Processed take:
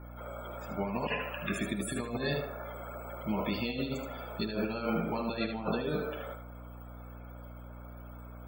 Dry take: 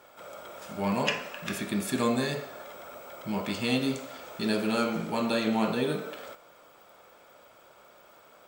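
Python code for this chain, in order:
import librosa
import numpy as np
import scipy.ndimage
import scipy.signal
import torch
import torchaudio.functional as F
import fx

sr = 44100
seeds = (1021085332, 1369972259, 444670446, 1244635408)

p1 = fx.over_compress(x, sr, threshold_db=-30.0, ratio=-0.5)
p2 = fx.spec_topn(p1, sr, count=64)
p3 = fx.add_hum(p2, sr, base_hz=60, snr_db=10)
p4 = p3 + fx.echo_thinned(p3, sr, ms=76, feedback_pct=16, hz=420.0, wet_db=-7, dry=0)
y = p4 * 10.0 ** (-2.0 / 20.0)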